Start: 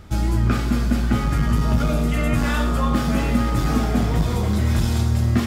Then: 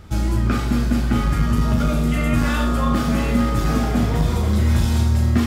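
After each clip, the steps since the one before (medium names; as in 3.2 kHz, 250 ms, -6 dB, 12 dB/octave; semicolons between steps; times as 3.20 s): flutter echo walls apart 6.5 m, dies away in 0.28 s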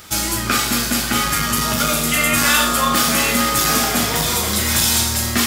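tilt EQ +4.5 dB/octave; trim +6.5 dB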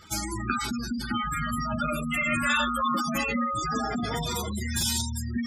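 spectral gate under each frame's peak -10 dB strong; trim -6.5 dB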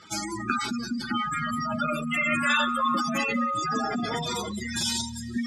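band-pass 160–7400 Hz; feedback echo behind a high-pass 186 ms, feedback 70%, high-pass 2.3 kHz, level -23 dB; trim +1.5 dB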